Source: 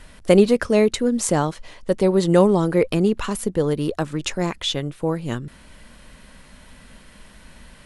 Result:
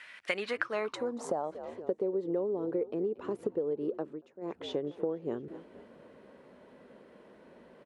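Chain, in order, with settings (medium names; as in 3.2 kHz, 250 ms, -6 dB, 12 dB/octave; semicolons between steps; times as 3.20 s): frequency-shifting echo 232 ms, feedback 56%, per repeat -81 Hz, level -18.5 dB; band-pass sweep 2.1 kHz -> 420 Hz, 0.32–1.81 s; 3.94–4.68 s: dip -22.5 dB, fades 0.27 s; compression 10:1, threshold -34 dBFS, peak gain reduction 19.5 dB; 0.95–1.44 s: peaking EQ 2.5 kHz -12 dB 1.1 oct; high-pass 55 Hz; bass shelf 170 Hz -8 dB; trim +6 dB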